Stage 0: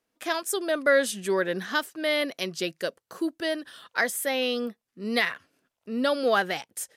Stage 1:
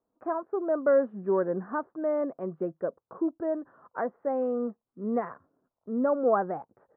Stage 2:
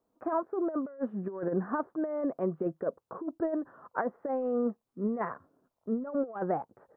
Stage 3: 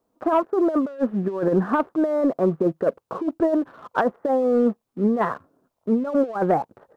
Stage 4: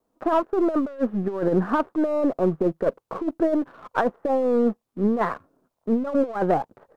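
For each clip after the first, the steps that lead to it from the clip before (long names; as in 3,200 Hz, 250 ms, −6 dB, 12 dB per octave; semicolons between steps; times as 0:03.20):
Butterworth low-pass 1,200 Hz 36 dB per octave
compressor whose output falls as the input rises −30 dBFS, ratio −0.5
leveller curve on the samples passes 1; level +7.5 dB
gain on one half-wave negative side −3 dB; tape wow and flutter 24 cents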